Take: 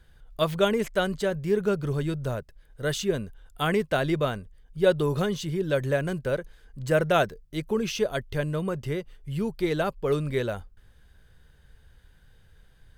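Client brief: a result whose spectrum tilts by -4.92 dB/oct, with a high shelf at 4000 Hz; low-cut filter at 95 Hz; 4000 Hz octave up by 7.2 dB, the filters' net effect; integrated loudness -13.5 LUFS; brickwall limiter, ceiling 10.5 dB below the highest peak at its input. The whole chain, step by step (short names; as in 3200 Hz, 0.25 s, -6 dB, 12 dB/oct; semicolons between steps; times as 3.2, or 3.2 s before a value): HPF 95 Hz; high shelf 4000 Hz +3.5 dB; bell 4000 Hz +7 dB; gain +15.5 dB; limiter -2 dBFS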